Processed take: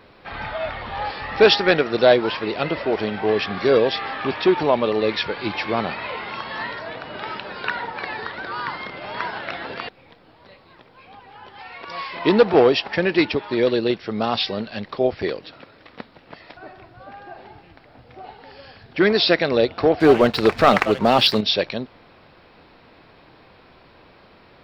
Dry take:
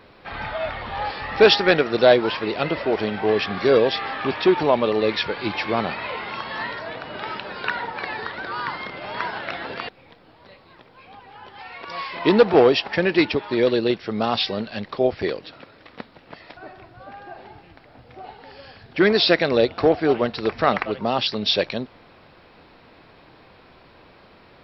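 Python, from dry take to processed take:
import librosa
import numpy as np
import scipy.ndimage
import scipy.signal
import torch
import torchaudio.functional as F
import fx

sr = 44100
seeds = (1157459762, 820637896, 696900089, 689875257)

y = fx.leveller(x, sr, passes=2, at=(20.0, 21.41))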